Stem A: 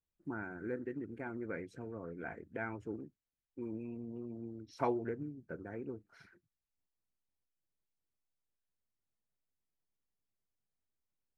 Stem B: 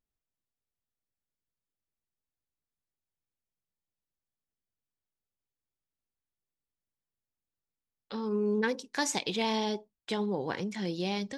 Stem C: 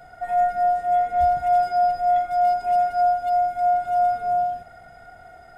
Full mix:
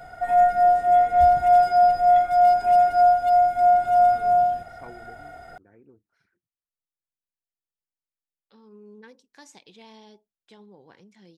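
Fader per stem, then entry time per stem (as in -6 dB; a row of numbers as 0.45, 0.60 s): -11.5, -18.5, +3.0 dB; 0.00, 0.40, 0.00 s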